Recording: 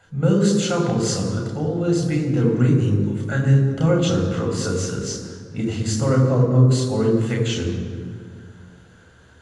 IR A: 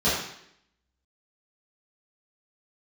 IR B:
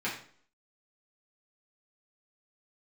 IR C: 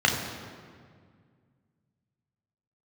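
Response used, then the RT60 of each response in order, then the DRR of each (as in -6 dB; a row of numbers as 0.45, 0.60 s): C; 0.70, 0.50, 1.9 s; -12.0, -8.0, 0.0 dB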